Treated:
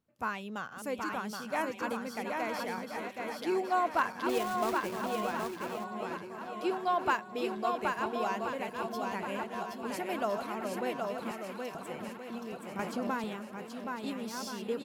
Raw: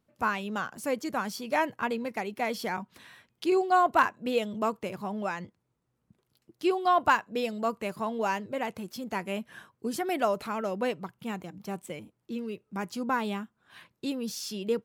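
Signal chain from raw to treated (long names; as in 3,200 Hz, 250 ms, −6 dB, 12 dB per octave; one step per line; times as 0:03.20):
feedback delay that plays each chunk backwards 688 ms, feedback 71%, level −7.5 dB
0:04.29–0:05.07: log-companded quantiser 4 bits
0:11.31–0:11.75: high-pass filter 1,500 Hz 12 dB per octave
on a send: single-tap delay 773 ms −4 dB
0:12.79–0:13.24: on the sum: multiband upward and downward compressor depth 100%
level −6.5 dB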